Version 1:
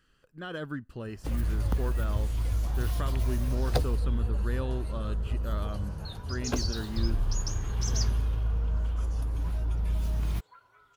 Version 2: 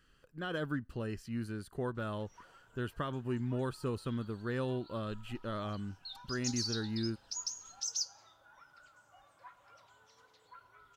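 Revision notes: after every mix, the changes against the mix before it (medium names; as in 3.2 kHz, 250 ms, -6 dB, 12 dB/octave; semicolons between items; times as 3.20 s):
first sound: muted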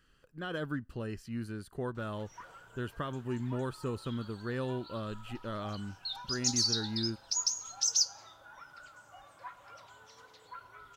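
background +8.0 dB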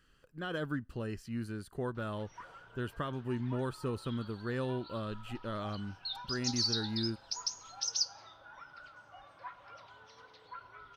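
background: add Savitzky-Golay filter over 15 samples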